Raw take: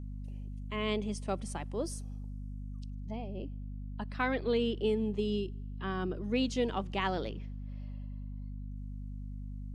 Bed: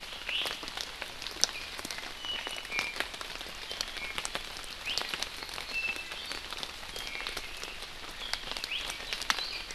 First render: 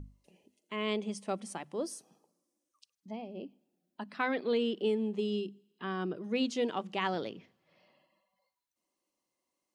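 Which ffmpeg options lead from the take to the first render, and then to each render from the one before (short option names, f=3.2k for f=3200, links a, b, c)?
-af "bandreject=f=50:t=h:w=6,bandreject=f=100:t=h:w=6,bandreject=f=150:t=h:w=6,bandreject=f=200:t=h:w=6,bandreject=f=250:t=h:w=6"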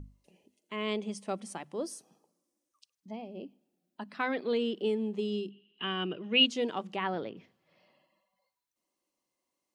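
-filter_complex "[0:a]asettb=1/sr,asplit=3[a][b][c];[a]atrim=end=5.504[d];[b]atrim=start=5.5:end=6.46,asetpts=PTS-STARTPTS,afade=t=in:d=0.004:c=qsin,afade=t=out:st=0.956:d=0.004:c=qsin,lowpass=f=2.9k:t=q:w=9.2[e];[c]atrim=start=6.456[f];[d][e]acrossfade=d=0.004:c1=hsin:c2=qsin[g];[g][f]acrossfade=d=0.004:c1=qsin:c2=hsin,asettb=1/sr,asplit=3[h][i][j];[h]atrim=end=6.964[k];[i]atrim=start=6.96:end=7.37,asetpts=PTS-STARTPTS,afade=t=in:d=0.004:c=qsin,afade=t=out:st=0.406:d=0.004:c=qsin,lowpass=2.6k[l];[j]atrim=start=7.366[m];[k][l]acrossfade=d=0.004:c1=hsin:c2=qsin[n];[n][m]acrossfade=d=0.004:c1=qsin:c2=hsin"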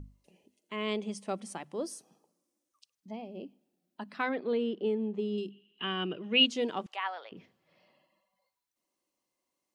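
-filter_complex "[0:a]asettb=1/sr,asplit=3[a][b][c];[a]atrim=end=4.294[d];[b]atrim=start=4.29:end=5.38,asetpts=PTS-STARTPTS,afade=t=in:d=0.004:c=qsin,afade=t=out:st=1.086:d=0.004:c=qsin,lowpass=f=1.6k:p=1[e];[c]atrim=start=5.376[f];[d][e]acrossfade=d=0.004:c1=hsin:c2=qsin[g];[g][f]acrossfade=d=0.004:c1=qsin:c2=hsin,asettb=1/sr,asplit=3[h][i][j];[h]atrim=end=6.864[k];[i]atrim=start=6.86:end=7.32,asetpts=PTS-STARTPTS,afade=t=in:d=0.004:c=qsin,afade=t=out:st=0.456:d=0.004:c=qsin,highpass=f=720:w=0.5412,highpass=f=720:w=1.3066[l];[j]atrim=start=7.316[m];[k][l]acrossfade=d=0.004:c1=hsin:c2=qsin[n];[n][m]acrossfade=d=0.004:c1=qsin:c2=hsin"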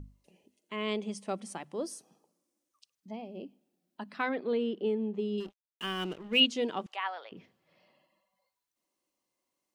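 -filter_complex "[0:a]asettb=1/sr,asplit=3[a][b][c];[a]atrim=end=5.404[d];[b]atrim=start=5.4:end=6.4,asetpts=PTS-STARTPTS,afade=t=in:d=0.004:c=qsin,afade=t=out:st=0.996:d=0.004:c=qsin,aeval=exprs='sgn(val(0))*max(abs(val(0))-0.00422,0)':c=same[e];[c]atrim=start=6.396[f];[d][e]acrossfade=d=0.004:c1=hsin:c2=qsin[g];[g][f]acrossfade=d=0.004:c1=qsin:c2=hsin"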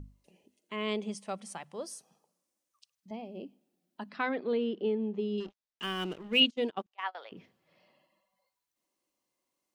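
-filter_complex "[0:a]asettb=1/sr,asplit=3[a][b][c];[a]atrim=end=1.154[d];[b]atrim=start=1.15:end=3.11,asetpts=PTS-STARTPTS,afade=t=in:d=0.004:c=qsin,afade=t=out:st=1.956:d=0.004:c=qsin,equalizer=f=310:w=1.5:g=-10.5[e];[c]atrim=start=3.106[f];[d][e]acrossfade=d=0.004:c1=hsin:c2=qsin[g];[g][f]acrossfade=d=0.004:c1=qsin:c2=hsin,asettb=1/sr,asplit=3[h][i][j];[h]atrim=end=4.094[k];[i]atrim=start=4.09:end=5.83,asetpts=PTS-STARTPTS,afade=t=in:d=0.004:c=qsin,afade=t=out:st=1.736:d=0.004:c=qsin,lowpass=f=6.8k:w=0.5412,lowpass=f=6.8k:w=1.3066[l];[j]atrim=start=5.826[m];[k][l]acrossfade=d=0.004:c1=hsin:c2=qsin[n];[n][m]acrossfade=d=0.004:c1=qsin:c2=hsin,asettb=1/sr,asplit=3[o][p][q];[o]atrim=end=6.424[r];[p]atrim=start=6.42:end=7.15,asetpts=PTS-STARTPTS,afade=t=in:d=0.004:c=qsin,afade=t=out:st=0.726:d=0.004:c=qsin,agate=range=-28dB:threshold=-35dB:ratio=16:release=100:detection=peak[s];[q]atrim=start=7.146[t];[r][s]acrossfade=d=0.004:c1=hsin:c2=qsin[u];[u][t]acrossfade=d=0.004:c1=qsin:c2=hsin"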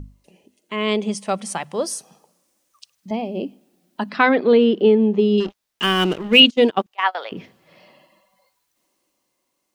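-af "dynaudnorm=f=180:g=13:m=6.5dB,alimiter=level_in=10dB:limit=-1dB:release=50:level=0:latency=1"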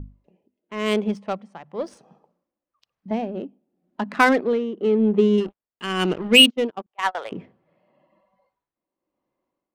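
-af "tremolo=f=0.96:d=0.75,adynamicsmooth=sensitivity=2:basefreq=1.4k"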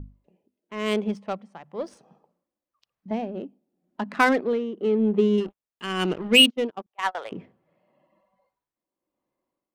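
-af "volume=-3dB"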